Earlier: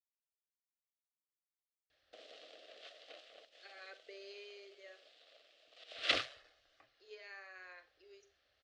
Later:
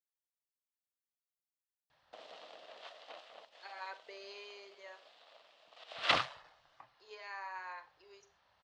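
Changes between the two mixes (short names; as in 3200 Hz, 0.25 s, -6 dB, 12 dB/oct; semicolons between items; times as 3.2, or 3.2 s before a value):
speech: add high shelf 5000 Hz +7.5 dB; master: remove fixed phaser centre 390 Hz, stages 4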